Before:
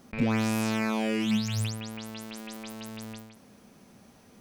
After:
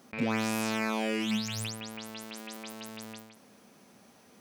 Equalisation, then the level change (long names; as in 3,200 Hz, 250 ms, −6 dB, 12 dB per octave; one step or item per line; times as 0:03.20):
high-pass filter 300 Hz 6 dB per octave
0.0 dB